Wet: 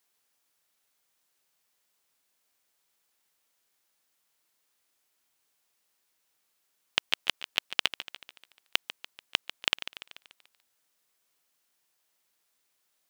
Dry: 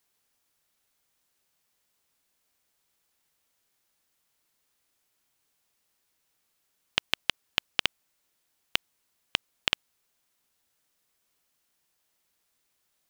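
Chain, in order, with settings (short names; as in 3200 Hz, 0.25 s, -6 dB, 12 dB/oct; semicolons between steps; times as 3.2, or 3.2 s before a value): low shelf 180 Hz -11 dB; lo-fi delay 0.145 s, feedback 55%, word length 7-bit, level -13 dB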